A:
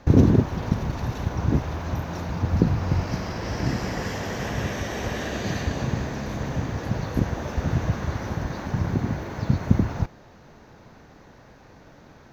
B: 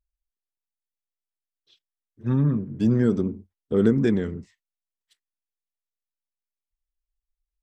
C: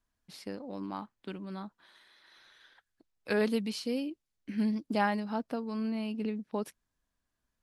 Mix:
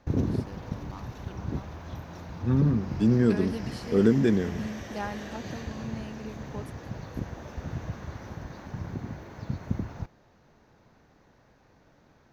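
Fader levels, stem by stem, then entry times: -11.0 dB, -1.5 dB, -6.5 dB; 0.00 s, 0.20 s, 0.00 s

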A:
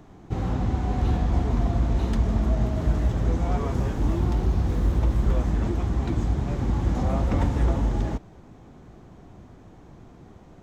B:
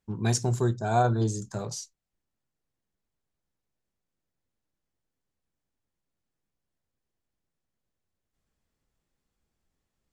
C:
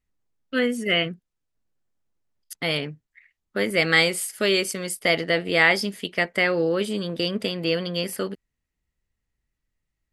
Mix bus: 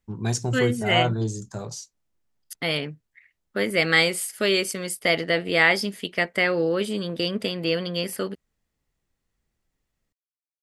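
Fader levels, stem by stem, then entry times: mute, 0.0 dB, -0.5 dB; mute, 0.00 s, 0.00 s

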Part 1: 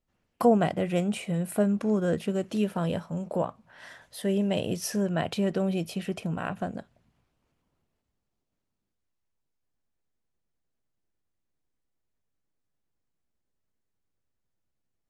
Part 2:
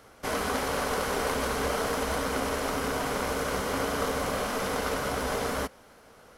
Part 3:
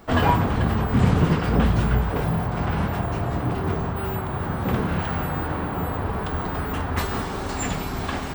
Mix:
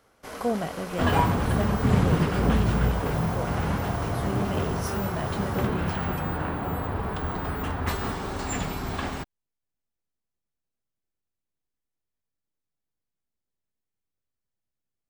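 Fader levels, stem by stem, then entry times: -6.0 dB, -9.0 dB, -3.0 dB; 0.00 s, 0.00 s, 0.90 s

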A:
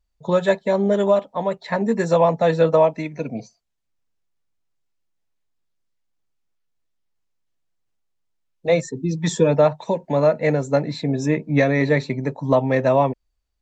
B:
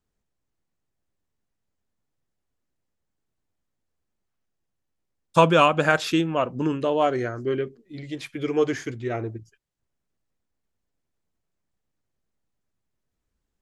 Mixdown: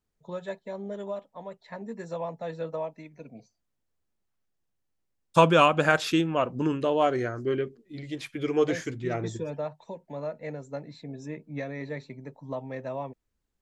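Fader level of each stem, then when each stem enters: -17.5 dB, -2.0 dB; 0.00 s, 0.00 s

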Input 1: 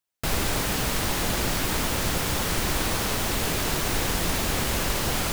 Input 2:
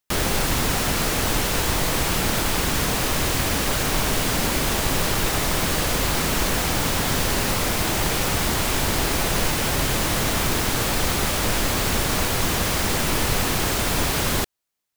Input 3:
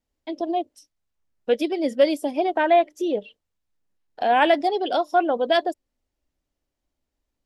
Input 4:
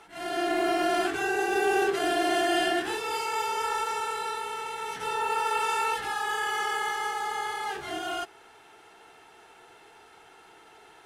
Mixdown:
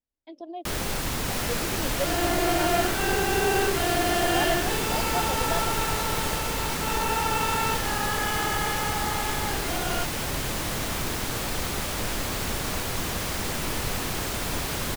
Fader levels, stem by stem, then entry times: -8.5 dB, -7.0 dB, -13.0 dB, 0.0 dB; 1.05 s, 0.55 s, 0.00 s, 1.80 s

